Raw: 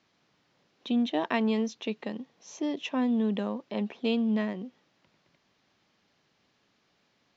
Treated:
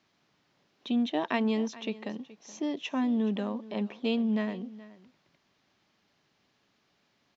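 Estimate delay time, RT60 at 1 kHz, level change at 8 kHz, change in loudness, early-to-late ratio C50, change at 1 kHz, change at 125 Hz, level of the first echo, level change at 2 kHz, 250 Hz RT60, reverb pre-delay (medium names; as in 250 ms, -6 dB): 424 ms, no reverb, no reading, -1.0 dB, no reverb, -1.0 dB, no reading, -18.5 dB, -1.0 dB, no reverb, no reverb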